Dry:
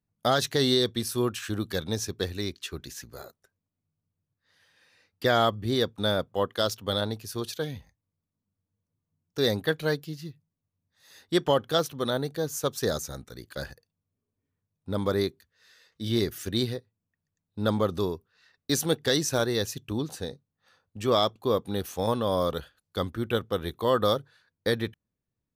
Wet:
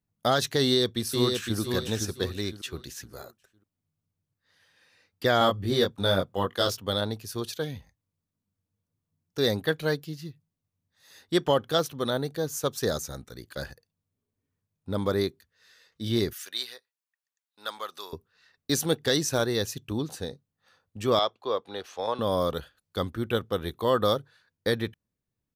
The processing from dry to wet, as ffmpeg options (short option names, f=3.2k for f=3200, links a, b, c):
-filter_complex "[0:a]asplit=2[a][b];[b]afade=t=in:st=0.62:d=0.01,afade=t=out:st=1.59:d=0.01,aecho=0:1:510|1020|1530|2040:0.595662|0.178699|0.0536096|0.0160829[c];[a][c]amix=inputs=2:normalize=0,asettb=1/sr,asplit=3[d][e][f];[d]atrim=end=5.394[g];[e]atrim=start=5.39:end=6.78,asetpts=PTS-STARTPTS,afade=t=in:d=0.004:c=qsin,afade=t=out:st=1.386:d=0.004:c=qsin,asplit=2[h][i];[i]adelay=21,volume=-3dB[j];[h][j]amix=inputs=2:normalize=0,atrim=end_sample=61299[k];[f]atrim=start=6.776[l];[g][k]acrossfade=d=0.004:c1=hsin:c2=qsin[m];[m][l]acrossfade=d=0.004:c1=qsin:c2=hsin,asettb=1/sr,asplit=3[n][o][p];[n]atrim=end=16.334[q];[o]atrim=start=16.33:end=18.13,asetpts=PTS-STARTPTS,afade=t=in:d=0.004:c=qsin,afade=t=out:st=1.796:d=0.004:c=qsin,highpass=1.2k[r];[p]atrim=start=18.126[s];[q][r]acrossfade=d=0.004:c1=hsin:c2=qsin[t];[t][s]acrossfade=d=0.004:c1=qsin:c2=hsin,asettb=1/sr,asplit=3[u][v][w];[u]atrim=end=21.194[x];[v]atrim=start=21.19:end=22.19,asetpts=PTS-STARTPTS,afade=t=in:d=0.004:c=qsin,afade=t=out:st=0.996:d=0.004:c=qsin,acrossover=split=410 5800:gain=0.126 1 0.0794[y][z][aa];[y][z][aa]amix=inputs=3:normalize=0[ab];[w]atrim=start=22.186[ac];[x][ab]acrossfade=d=0.004:c1=hsin:c2=qsin[ad];[ad][ac]acrossfade=d=0.004:c1=qsin:c2=hsin"